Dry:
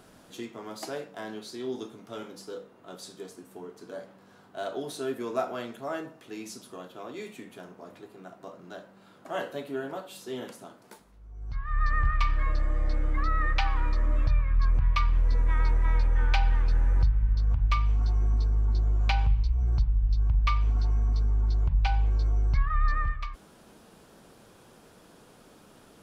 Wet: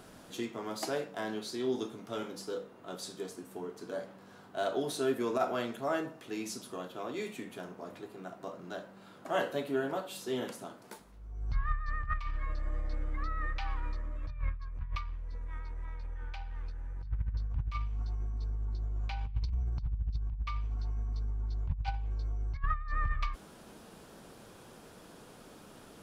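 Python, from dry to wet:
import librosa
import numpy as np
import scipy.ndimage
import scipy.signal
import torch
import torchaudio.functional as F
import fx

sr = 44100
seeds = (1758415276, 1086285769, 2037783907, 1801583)

y = fx.over_compress(x, sr, threshold_db=-27.0, ratio=-0.5)
y = y * librosa.db_to_amplitude(-4.0)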